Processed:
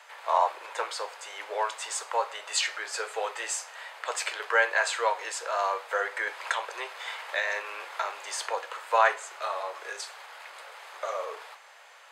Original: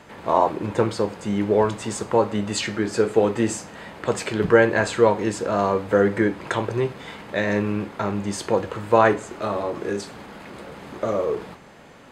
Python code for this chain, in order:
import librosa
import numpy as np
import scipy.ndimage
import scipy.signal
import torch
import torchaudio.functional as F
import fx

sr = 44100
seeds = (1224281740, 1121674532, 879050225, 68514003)

y = scipy.signal.sosfilt(scipy.signal.bessel(8, 1000.0, 'highpass', norm='mag', fs=sr, output='sos'), x)
y = fx.band_squash(y, sr, depth_pct=40, at=(6.27, 8.58))